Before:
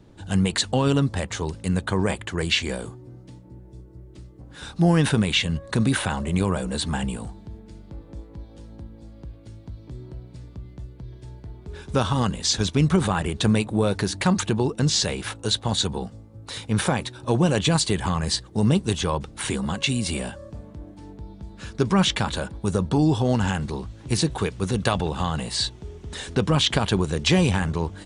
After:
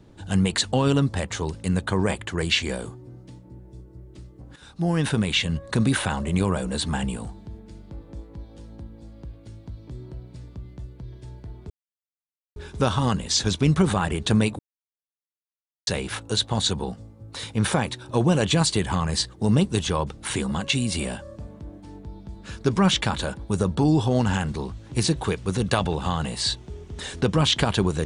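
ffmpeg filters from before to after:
-filter_complex "[0:a]asplit=5[a][b][c][d][e];[a]atrim=end=4.56,asetpts=PTS-STARTPTS,afade=t=out:st=4.556:d=0.004:c=hsin:silence=0.237137[f];[b]atrim=start=4.56:end=11.7,asetpts=PTS-STARTPTS,afade=t=in:d=1.25:c=qsin:silence=0.237137,afade=t=out:st=7.136:d=0.004:c=hsin,apad=pad_dur=0.86[g];[c]atrim=start=11.7:end=13.73,asetpts=PTS-STARTPTS,afade=t=in:d=0.004:c=hsin,afade=t=out:st=2.026:d=0.004:c=hsin[h];[d]atrim=start=13.73:end=15.01,asetpts=PTS-STARTPTS,volume=0[i];[e]atrim=start=15.01,asetpts=PTS-STARTPTS,afade=t=in:d=0.004:c=hsin[j];[f][g][h][i][j]concat=n=5:v=0:a=1"

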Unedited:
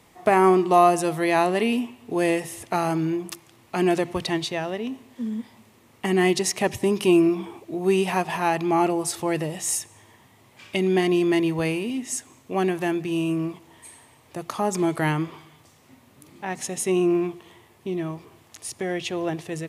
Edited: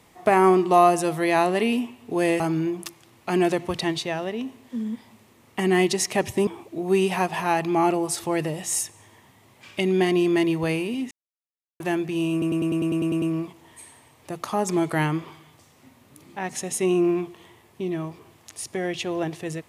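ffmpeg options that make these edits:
-filter_complex "[0:a]asplit=14[a][b][c][d][e][f][g][h][i][j][k][l][m][n];[a]atrim=end=2.402[o];[b]atrim=start=2.858:end=6.932[p];[c]atrim=start=7.428:end=12.07,asetpts=PTS-STARTPTS,afade=t=out:st=4.638:d=0.004:c=hsin[q];[d]atrim=start=12.07:end=12.76,asetpts=PTS-STARTPTS,volume=0[r];[e]atrim=start=12.76:end=13.382,asetpts=PTS-STARTPTS,afade=t=in:d=0.004:c=hsin[s];[f]atrim=start=13.278:end=13.382[t];[g]atrim=start=13.278:end=13.382[u];[h]atrim=start=13.278:end=13.382[v];[i]atrim=start=13.278:end=13.382[w];[j]atrim=start=13.278:end=13.382[x];[k]atrim=start=13.278:end=13.382[y];[l]atrim=start=13.278:end=13.382[z];[m]atrim=start=13.278:end=13.382[aa];[n]atrim=start=13.278[ab];[o][p]acrossfade=d=0.004:c1=hsin:c2=hsin[ac];[q][r][s]concat=n=3:v=0:a=1[ad];[ac][ad]acrossfade=d=0.004:c1=hsin:c2=hsin[ae];[ae][t]acrossfade=d=0.004:c1=hsin:c2=hsin[af];[af][u]acrossfade=d=0.004:c1=hsin:c2=hsin[ag];[ag][v]acrossfade=d=0.004:c1=hsin:c2=hsin[ah];[ah][w]acrossfade=d=0.004:c1=hsin:c2=hsin[ai];[ai][x]acrossfade=d=0.004:c1=hsin:c2=hsin[aj];[aj][y]acrossfade=d=0.004:c1=hsin:c2=hsin[ak];[ak][z]acrossfade=d=0.004:c1=hsin:c2=hsin[al];[al][aa]acrossfade=d=0.004:c1=hsin:c2=hsin[am];[am][ab]acrossfade=d=0.004:c1=hsin:c2=hsin"

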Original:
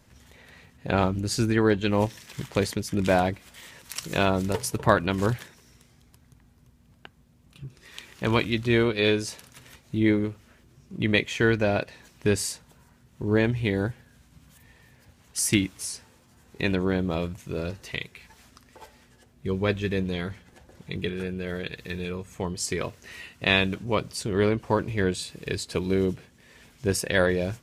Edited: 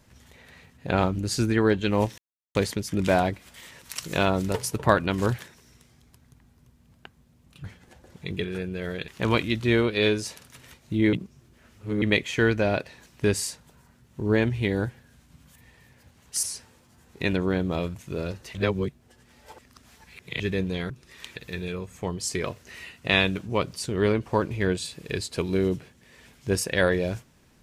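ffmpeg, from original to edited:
-filter_complex "[0:a]asplit=12[a][b][c][d][e][f][g][h][i][j][k][l];[a]atrim=end=2.18,asetpts=PTS-STARTPTS,afade=t=out:st=2.176:d=0.004:c=hsin[m];[b]atrim=start=2.18:end=2.55,asetpts=PTS-STARTPTS,volume=0[n];[c]atrim=start=2.55:end=7.642,asetpts=PTS-STARTPTS,afade=t=in:d=0.004:c=hsin[o];[d]atrim=start=20.288:end=21.732[p];[e]atrim=start=8.098:end=10.152[q];[f]atrim=start=10.148:end=11.042,asetpts=PTS-STARTPTS,areverse[r];[g]atrim=start=11.038:end=15.452[s];[h]atrim=start=15.818:end=17.942[t];[i]atrim=start=17.938:end=19.792,asetpts=PTS-STARTPTS,areverse[u];[j]atrim=start=19.788:end=20.292[v];[k]atrim=start=7.638:end=8.102[w];[l]atrim=start=21.728[x];[m][n][o]concat=n=3:v=0:a=1[y];[y][p]acrossfade=d=0.004:c1=hsin:c2=hsin[z];[z][q]acrossfade=d=0.004:c1=hsin:c2=hsin[aa];[aa][r]acrossfade=d=0.004:c1=hsin:c2=hsin[ab];[ab][s]acrossfade=d=0.004:c1=hsin:c2=hsin[ac];[ac][t]acrossfade=d=0.004:c1=hsin:c2=hsin[ad];[ad][u]acrossfade=d=0.004:c1=hsin:c2=hsin[ae];[ae][v]acrossfade=d=0.004:c1=hsin:c2=hsin[af];[af][w]acrossfade=d=0.004:c1=hsin:c2=hsin[ag];[ag][x]acrossfade=d=0.004:c1=hsin:c2=hsin"

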